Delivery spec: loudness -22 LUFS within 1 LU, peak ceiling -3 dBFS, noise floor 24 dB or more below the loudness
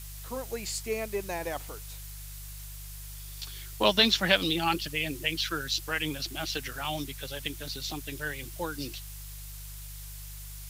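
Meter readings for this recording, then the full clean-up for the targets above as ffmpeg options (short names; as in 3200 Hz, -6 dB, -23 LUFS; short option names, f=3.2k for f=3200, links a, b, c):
hum 50 Hz; harmonics up to 150 Hz; hum level -41 dBFS; noise floor -42 dBFS; noise floor target -54 dBFS; loudness -30.0 LUFS; peak -8.0 dBFS; loudness target -22.0 LUFS
-> -af "bandreject=f=50:t=h:w=4,bandreject=f=100:t=h:w=4,bandreject=f=150:t=h:w=4"
-af "afftdn=nr=12:nf=-42"
-af "volume=8dB,alimiter=limit=-3dB:level=0:latency=1"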